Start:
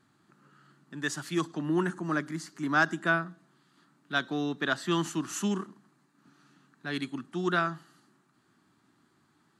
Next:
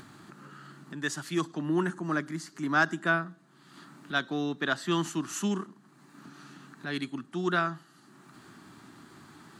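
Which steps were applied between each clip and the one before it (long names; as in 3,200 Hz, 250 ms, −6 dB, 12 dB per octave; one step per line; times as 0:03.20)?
upward compression, threshold −37 dBFS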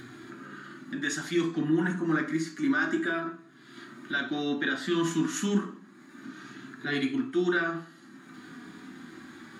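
brickwall limiter −23.5 dBFS, peak gain reduction 10.5 dB
flanger 0.29 Hz, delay 2.8 ms, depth 1.4 ms, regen −34%
convolution reverb RT60 0.45 s, pre-delay 3 ms, DRR 1 dB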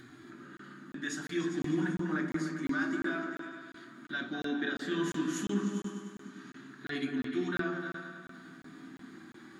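on a send: echo whose low-pass opens from repeat to repeat 100 ms, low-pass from 400 Hz, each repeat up 2 octaves, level −3 dB
on the sum: regular buffer underruns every 0.35 s, samples 1,024, zero, from 0:00.57
level −7 dB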